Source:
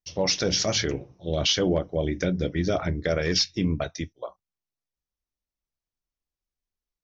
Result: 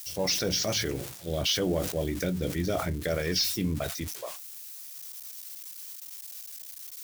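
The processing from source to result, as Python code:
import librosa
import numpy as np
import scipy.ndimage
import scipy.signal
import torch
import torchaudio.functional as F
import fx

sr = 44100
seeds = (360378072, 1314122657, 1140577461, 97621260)

y = x + 0.5 * 10.0 ** (-28.0 / 20.0) * np.diff(np.sign(x), prepend=np.sign(x[:1]))
y = fx.sustainer(y, sr, db_per_s=65.0)
y = y * 10.0 ** (-4.5 / 20.0)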